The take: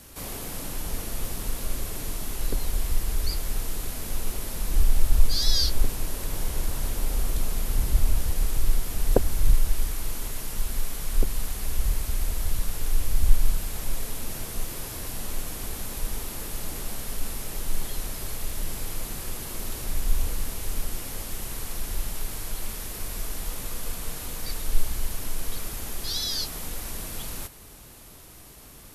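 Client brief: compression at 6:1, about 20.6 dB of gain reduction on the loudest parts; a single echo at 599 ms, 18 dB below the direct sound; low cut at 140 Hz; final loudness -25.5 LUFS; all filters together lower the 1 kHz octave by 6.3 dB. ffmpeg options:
-af "highpass=140,equalizer=f=1000:t=o:g=-8.5,acompressor=threshold=0.00708:ratio=6,aecho=1:1:599:0.126,volume=7.94"

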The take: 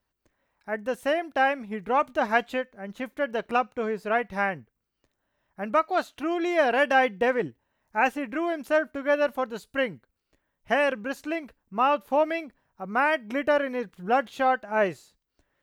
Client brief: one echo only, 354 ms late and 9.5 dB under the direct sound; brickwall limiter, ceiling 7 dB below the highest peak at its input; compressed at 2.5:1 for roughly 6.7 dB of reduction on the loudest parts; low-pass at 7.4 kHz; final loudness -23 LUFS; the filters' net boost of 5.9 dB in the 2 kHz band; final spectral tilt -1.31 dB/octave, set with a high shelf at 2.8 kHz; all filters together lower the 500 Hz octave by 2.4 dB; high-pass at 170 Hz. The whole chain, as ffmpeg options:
-af "highpass=170,lowpass=7400,equalizer=f=500:t=o:g=-3.5,equalizer=f=2000:t=o:g=6,highshelf=f=2800:g=5,acompressor=threshold=0.0631:ratio=2.5,alimiter=limit=0.126:level=0:latency=1,aecho=1:1:354:0.335,volume=2.24"

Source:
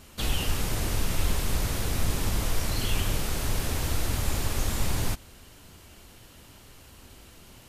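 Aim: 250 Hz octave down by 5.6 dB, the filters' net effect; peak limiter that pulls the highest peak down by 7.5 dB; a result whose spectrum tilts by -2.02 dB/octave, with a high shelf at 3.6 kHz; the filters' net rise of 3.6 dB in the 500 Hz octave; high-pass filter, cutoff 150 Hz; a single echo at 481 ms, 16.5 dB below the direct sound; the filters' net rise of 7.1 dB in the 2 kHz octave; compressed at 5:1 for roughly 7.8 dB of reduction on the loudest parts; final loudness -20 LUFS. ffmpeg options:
-af "highpass=150,equalizer=f=250:t=o:g=-9,equalizer=f=500:t=o:g=6.5,equalizer=f=2000:t=o:g=7.5,highshelf=f=3600:g=4,acompressor=threshold=0.02:ratio=5,alimiter=level_in=2:limit=0.0631:level=0:latency=1,volume=0.501,aecho=1:1:481:0.15,volume=8.91"

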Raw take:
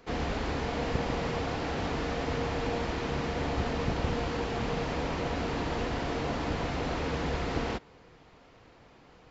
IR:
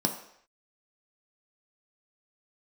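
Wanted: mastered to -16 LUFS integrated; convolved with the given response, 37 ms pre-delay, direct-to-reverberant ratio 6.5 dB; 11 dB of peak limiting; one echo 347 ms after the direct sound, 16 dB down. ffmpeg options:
-filter_complex "[0:a]alimiter=level_in=1.41:limit=0.0631:level=0:latency=1,volume=0.708,aecho=1:1:347:0.158,asplit=2[s0][s1];[1:a]atrim=start_sample=2205,adelay=37[s2];[s1][s2]afir=irnorm=-1:irlink=0,volume=0.188[s3];[s0][s3]amix=inputs=2:normalize=0,volume=7.5"

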